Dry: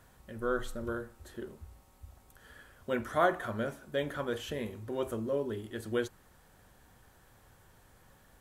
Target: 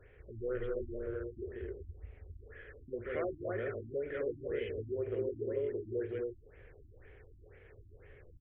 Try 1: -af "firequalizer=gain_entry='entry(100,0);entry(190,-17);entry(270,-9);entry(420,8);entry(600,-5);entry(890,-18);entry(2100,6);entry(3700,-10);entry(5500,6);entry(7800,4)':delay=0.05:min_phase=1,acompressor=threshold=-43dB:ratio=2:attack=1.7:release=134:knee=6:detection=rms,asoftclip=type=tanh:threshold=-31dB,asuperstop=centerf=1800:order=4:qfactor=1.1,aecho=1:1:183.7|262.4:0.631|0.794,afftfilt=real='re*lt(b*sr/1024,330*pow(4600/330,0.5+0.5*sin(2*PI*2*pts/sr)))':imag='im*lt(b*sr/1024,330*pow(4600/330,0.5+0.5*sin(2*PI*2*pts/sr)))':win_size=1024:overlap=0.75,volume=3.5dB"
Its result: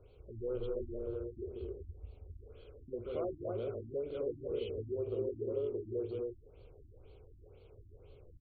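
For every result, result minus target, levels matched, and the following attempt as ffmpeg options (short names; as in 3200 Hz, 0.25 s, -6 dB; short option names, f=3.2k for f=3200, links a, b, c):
2000 Hz band -16.0 dB; soft clip: distortion +18 dB
-af "firequalizer=gain_entry='entry(100,0);entry(190,-17);entry(270,-9);entry(420,8);entry(600,-5);entry(890,-18);entry(2100,6);entry(3700,-10);entry(5500,6);entry(7800,4)':delay=0.05:min_phase=1,acompressor=threshold=-43dB:ratio=2:attack=1.7:release=134:knee=6:detection=rms,asoftclip=type=tanh:threshold=-31dB,asuperstop=centerf=4700:order=4:qfactor=1.1,aecho=1:1:183.7|262.4:0.631|0.794,afftfilt=real='re*lt(b*sr/1024,330*pow(4600/330,0.5+0.5*sin(2*PI*2*pts/sr)))':imag='im*lt(b*sr/1024,330*pow(4600/330,0.5+0.5*sin(2*PI*2*pts/sr)))':win_size=1024:overlap=0.75,volume=3.5dB"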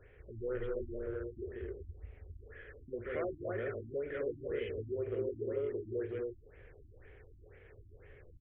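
soft clip: distortion +18 dB
-af "firequalizer=gain_entry='entry(100,0);entry(190,-17);entry(270,-9);entry(420,8);entry(600,-5);entry(890,-18);entry(2100,6);entry(3700,-10);entry(5500,6);entry(7800,4)':delay=0.05:min_phase=1,acompressor=threshold=-43dB:ratio=2:attack=1.7:release=134:knee=6:detection=rms,asoftclip=type=tanh:threshold=-21dB,asuperstop=centerf=4700:order=4:qfactor=1.1,aecho=1:1:183.7|262.4:0.631|0.794,afftfilt=real='re*lt(b*sr/1024,330*pow(4600/330,0.5+0.5*sin(2*PI*2*pts/sr)))':imag='im*lt(b*sr/1024,330*pow(4600/330,0.5+0.5*sin(2*PI*2*pts/sr)))':win_size=1024:overlap=0.75,volume=3.5dB"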